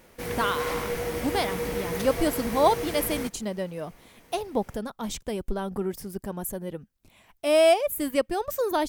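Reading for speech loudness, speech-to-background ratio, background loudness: −27.5 LKFS, 4.0 dB, −31.5 LKFS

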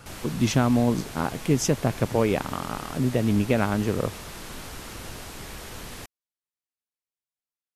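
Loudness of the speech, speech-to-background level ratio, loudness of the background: −25.0 LKFS, 14.0 dB, −39.0 LKFS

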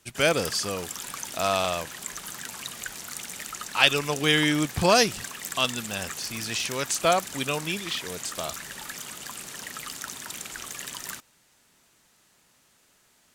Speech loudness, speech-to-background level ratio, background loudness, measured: −25.5 LKFS, 10.0 dB, −35.5 LKFS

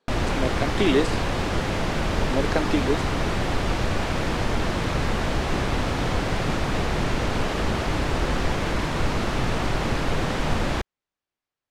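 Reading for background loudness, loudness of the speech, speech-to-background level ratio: −25.5 LKFS, −26.5 LKFS, −1.0 dB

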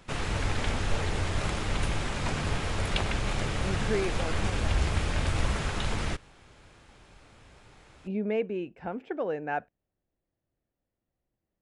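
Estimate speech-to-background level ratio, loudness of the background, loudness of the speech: −3.5 dB, −31.0 LKFS, −34.5 LKFS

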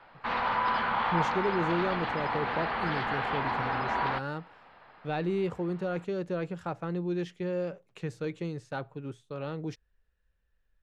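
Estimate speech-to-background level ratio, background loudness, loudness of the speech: −4.5 dB, −30.5 LKFS, −35.0 LKFS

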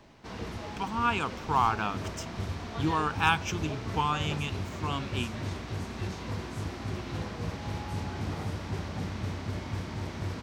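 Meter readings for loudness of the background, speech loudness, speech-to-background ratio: −36.5 LKFS, −30.5 LKFS, 6.0 dB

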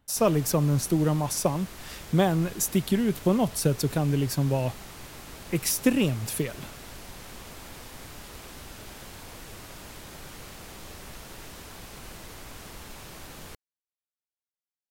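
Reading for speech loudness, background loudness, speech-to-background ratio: −26.0 LKFS, −43.0 LKFS, 17.0 dB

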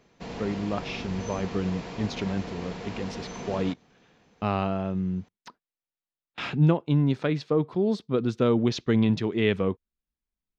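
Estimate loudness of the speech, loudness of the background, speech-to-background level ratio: −27.5 LKFS, −38.0 LKFS, 10.5 dB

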